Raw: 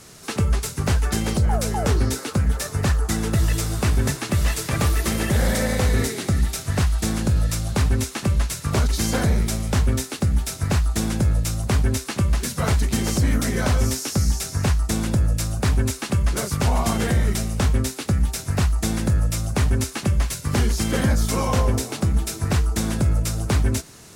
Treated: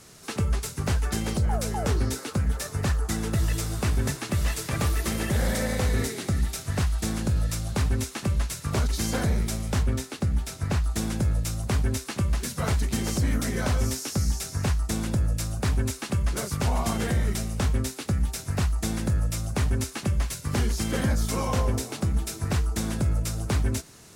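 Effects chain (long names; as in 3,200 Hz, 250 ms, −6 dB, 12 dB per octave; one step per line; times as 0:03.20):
0:09.83–0:10.84: high-shelf EQ 5,600 Hz −5.5 dB
level −5 dB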